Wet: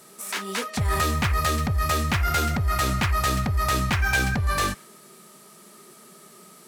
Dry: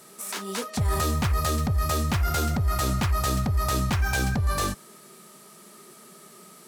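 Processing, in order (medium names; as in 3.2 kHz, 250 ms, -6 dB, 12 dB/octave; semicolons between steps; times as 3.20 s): dynamic bell 2.1 kHz, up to +8 dB, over -45 dBFS, Q 0.91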